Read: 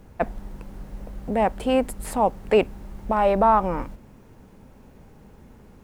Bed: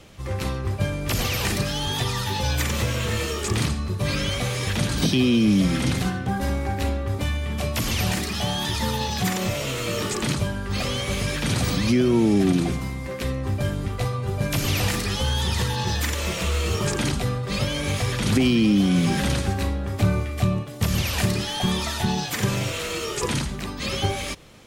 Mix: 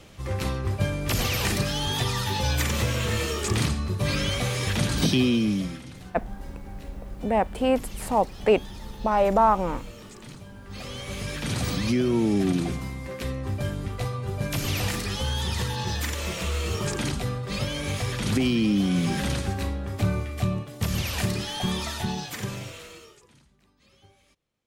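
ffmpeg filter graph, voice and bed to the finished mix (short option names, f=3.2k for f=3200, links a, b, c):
-filter_complex "[0:a]adelay=5950,volume=-1.5dB[a];[1:a]volume=14.5dB,afade=t=out:st=5.16:d=0.67:silence=0.11885,afade=t=in:st=10.46:d=1.22:silence=0.16788,afade=t=out:st=21.85:d=1.38:silence=0.0354813[b];[a][b]amix=inputs=2:normalize=0"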